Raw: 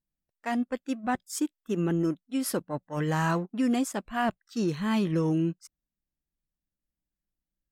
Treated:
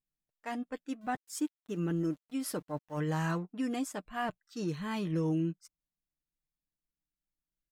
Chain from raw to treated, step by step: 1.01–3.01 s: small samples zeroed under -52 dBFS; comb 6.6 ms, depth 40%; trim -7 dB

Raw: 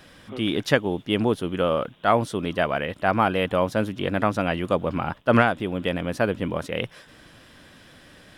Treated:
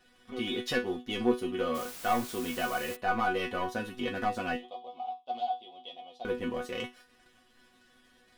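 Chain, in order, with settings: waveshaping leveller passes 2; in parallel at -3 dB: compression, threshold -25 dBFS, peak gain reduction 14.5 dB; 4.56–6.25 s: on the sum: two resonant band-passes 1.6 kHz, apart 2.2 oct; chord resonator B3 fifth, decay 0.23 s; 1.74–2.95 s: added noise white -45 dBFS

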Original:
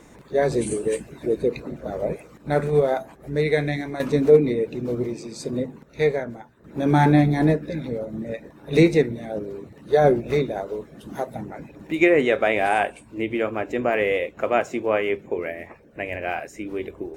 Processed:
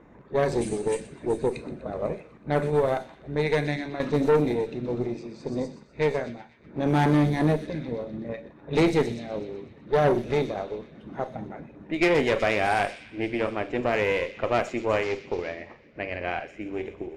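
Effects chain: 15.03–15.56 s: CVSD coder 32 kbps; Schroeder reverb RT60 0.32 s, combs from 30 ms, DRR 11.5 dB; valve stage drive 15 dB, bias 0.65; on a send: feedback echo behind a high-pass 124 ms, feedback 76%, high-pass 4.3 kHz, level -6 dB; on the sum: level-controlled noise filter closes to 1.7 kHz, open at -19 dBFS

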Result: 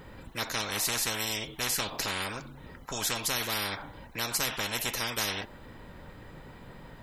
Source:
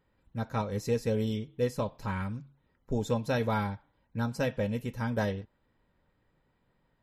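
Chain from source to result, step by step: spectrum-flattening compressor 10:1; trim +1.5 dB

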